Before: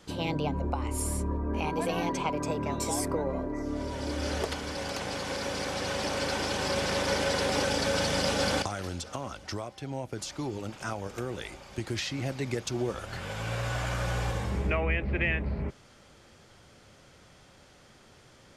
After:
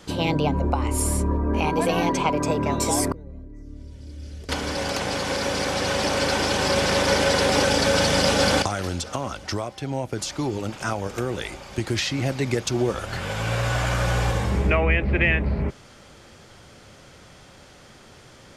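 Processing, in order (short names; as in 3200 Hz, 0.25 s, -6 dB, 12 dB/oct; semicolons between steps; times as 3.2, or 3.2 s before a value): 3.12–4.49 passive tone stack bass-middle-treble 10-0-1; gain +8 dB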